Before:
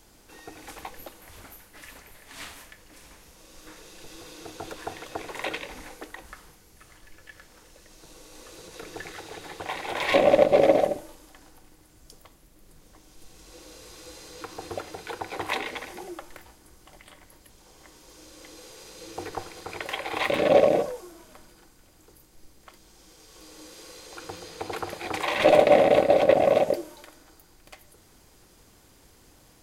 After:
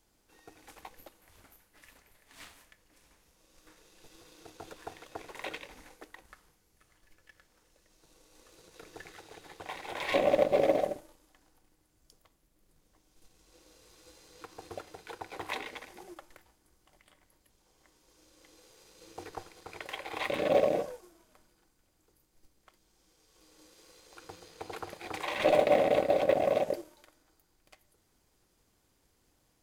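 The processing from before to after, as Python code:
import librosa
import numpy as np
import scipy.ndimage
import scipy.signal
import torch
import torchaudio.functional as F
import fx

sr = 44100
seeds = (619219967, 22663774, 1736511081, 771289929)

y = fx.law_mismatch(x, sr, coded='A')
y = y * librosa.db_to_amplitude(-7.0)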